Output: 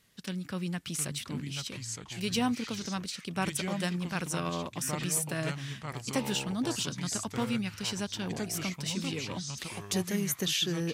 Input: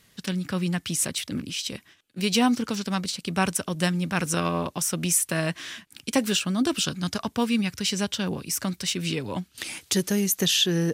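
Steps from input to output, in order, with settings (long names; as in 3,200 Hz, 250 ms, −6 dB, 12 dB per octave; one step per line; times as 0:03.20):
delay with pitch and tempo change per echo 640 ms, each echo −4 semitones, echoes 2, each echo −6 dB
level −8 dB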